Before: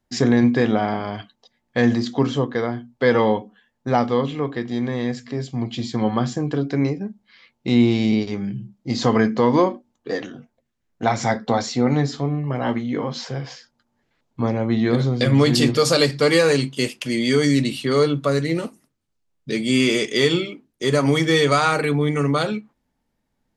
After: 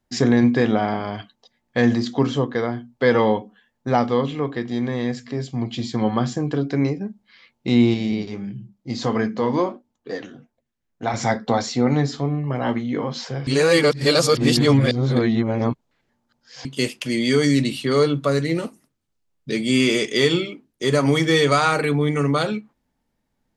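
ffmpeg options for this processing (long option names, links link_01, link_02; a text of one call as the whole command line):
ffmpeg -i in.wav -filter_complex "[0:a]asettb=1/sr,asplit=3[link_01][link_02][link_03];[link_01]atrim=end=7.944[link_04];[link_02]atrim=start=7.94:end=11.14,asetpts=PTS-STARTPTS,afade=type=in:duration=0.004:curve=qsin,afade=type=out:start_time=3.196:duration=0.004:curve=qsin,flanger=delay=0.8:depth=8.8:regen=-73:speed=1.5:shape=triangular[link_05];[link_03]atrim=start=11.136[link_06];[link_04][link_05]acrossfade=duration=0.004:curve1=hsin:curve2=qsin[link_07];[link_07][link_06]acrossfade=duration=0.004:curve1=qsin:curve2=hsin,asplit=3[link_08][link_09][link_10];[link_08]atrim=end=13.472[link_11];[link_09]atrim=start=13.468:end=16.652,asetpts=PTS-STARTPTS,areverse[link_12];[link_10]atrim=start=16.648[link_13];[link_11][link_12]acrossfade=duration=0.004:curve1=hsin:curve2=hsin[link_14];[link_14][link_13]acrossfade=duration=0.004:curve1=hsin:curve2=hsin" out.wav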